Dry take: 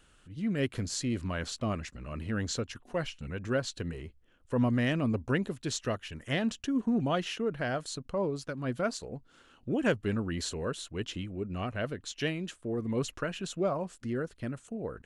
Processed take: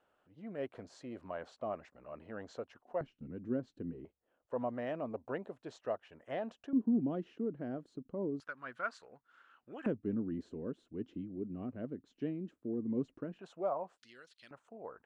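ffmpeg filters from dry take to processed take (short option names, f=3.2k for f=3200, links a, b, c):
-af "asetnsamples=n=441:p=0,asendcmd='3.01 bandpass f 270;4.05 bandpass f 680;6.73 bandpass f 280;8.4 bandpass f 1400;9.86 bandpass f 270;13.39 bandpass f 780;13.98 bandpass f 4000;14.51 bandpass f 880',bandpass=f=690:t=q:w=2.1:csg=0"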